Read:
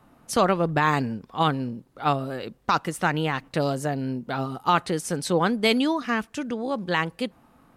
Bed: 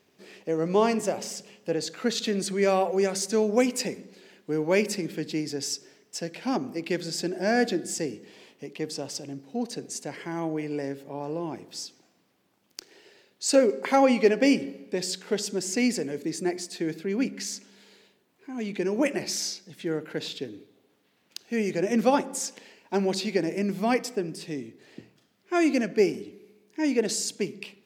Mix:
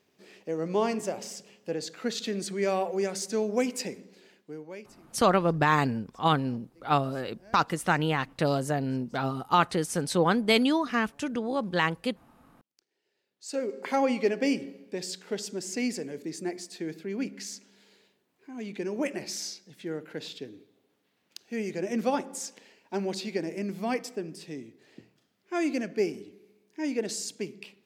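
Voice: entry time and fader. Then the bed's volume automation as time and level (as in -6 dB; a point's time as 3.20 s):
4.85 s, -1.5 dB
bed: 4.28 s -4.5 dB
4.98 s -27.5 dB
12.94 s -27.5 dB
13.84 s -5.5 dB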